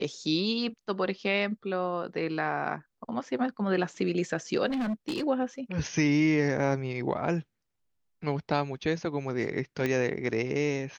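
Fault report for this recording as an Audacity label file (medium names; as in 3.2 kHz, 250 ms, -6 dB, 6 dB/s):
4.660000	5.240000	clipped -27 dBFS
9.860000	9.860000	pop -16 dBFS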